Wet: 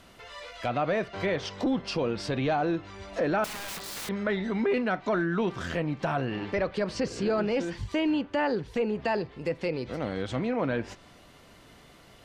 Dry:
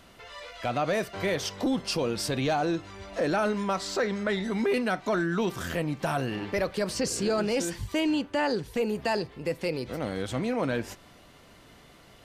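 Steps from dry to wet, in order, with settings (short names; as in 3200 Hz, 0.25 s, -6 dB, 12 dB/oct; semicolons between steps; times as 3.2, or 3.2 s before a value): treble ducked by the level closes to 2900 Hz, closed at -25 dBFS; 3.44–4.09 wrapped overs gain 32.5 dB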